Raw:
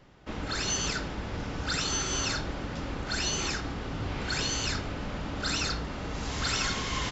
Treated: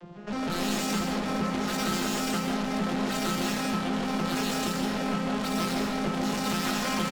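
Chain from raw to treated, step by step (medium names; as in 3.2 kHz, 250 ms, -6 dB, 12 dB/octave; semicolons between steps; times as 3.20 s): vocoder on a broken chord minor triad, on F3, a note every 155 ms; level rider gain up to 10 dB; in parallel at +2 dB: peak limiter -22.5 dBFS, peak gain reduction 11.5 dB; on the sum: valve stage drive 37 dB, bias 0.6; doubling 20 ms -8 dB; on a send at -1 dB: reverberation RT60 1.0 s, pre-delay 100 ms; on the sum: trim +6.5 dB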